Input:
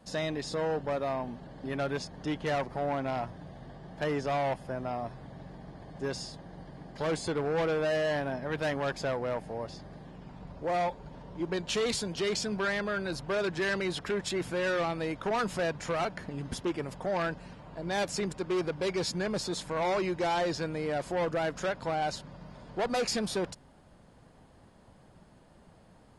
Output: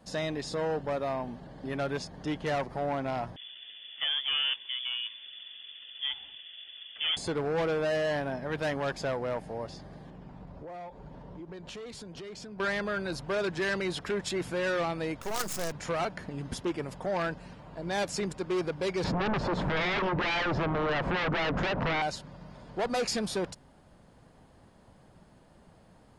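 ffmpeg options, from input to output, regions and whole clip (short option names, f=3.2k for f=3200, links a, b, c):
-filter_complex "[0:a]asettb=1/sr,asplit=3[a][b][c];[a]atrim=end=3.364[d];[b]atrim=start=3.36:end=7.17,asetpts=PTS-STARTPTS,afade=t=in:d=0.004:c=qsin,afade=t=out:st=3.806:d=0.004:c=qsin,highpass=84,lowpass=f=3.1k:t=q:w=0.5098,lowpass=f=3.1k:t=q:w=0.6013,lowpass=f=3.1k:t=q:w=0.9,lowpass=f=3.1k:t=q:w=2.563,afreqshift=-3600[e];[c]atrim=start=7.166[f];[d][e]acrossfade=d=0.004:c1=hsin:c2=qsin[g];[g][f]acrossfade=d=0.004:c1=qsin:c2=hsin,asettb=1/sr,asplit=3[h][i][j];[h]atrim=end=10.104[k];[i]atrim=start=10.1:end=12.6,asetpts=PTS-STARTPTS,afade=t=in:d=0.004:c=qsin,afade=t=out:st=2.496:d=0.004:c=qsin,highshelf=f=2.5k:g=-8,acompressor=threshold=-40dB:ratio=12:attack=3.2:release=140:knee=1:detection=peak[l];[j]atrim=start=12.596[m];[k][l]acrossfade=d=0.004:c1=hsin:c2=qsin[n];[n][m]acrossfade=d=0.004:c1=qsin:c2=hsin,asettb=1/sr,asplit=3[o][p][q];[o]atrim=end=15.214[r];[p]atrim=start=15.21:end=15.72,asetpts=PTS-STARTPTS,afade=t=in:d=0.004:c=qsin,afade=t=out:st=0.506:d=0.004:c=qsin,highshelf=f=4.5k:t=q:w=1.5:g=11.5,acrusher=bits=5:dc=4:mix=0:aa=0.000001[s];[q]atrim=start=15.716[t];[r][s]acrossfade=d=0.004:c1=hsin:c2=qsin[u];[u][t]acrossfade=d=0.004:c1=qsin:c2=hsin,asettb=1/sr,asplit=3[v][w][x];[v]atrim=end=19.044[y];[w]atrim=start=19.04:end=22.02,asetpts=PTS-STARTPTS,afade=t=in:d=0.004:c=qsin,afade=t=out:st=2.976:d=0.004:c=qsin,lowpass=1.2k,acompressor=threshold=-41dB:ratio=2:attack=3.2:release=140:knee=1:detection=peak,aeval=exprs='0.0562*sin(PI/2*5.62*val(0)/0.0562)':c=same[z];[x]atrim=start=22.016[aa];[y][z]acrossfade=d=0.004:c1=hsin:c2=qsin[ab];[ab][aa]acrossfade=d=0.004:c1=qsin:c2=hsin"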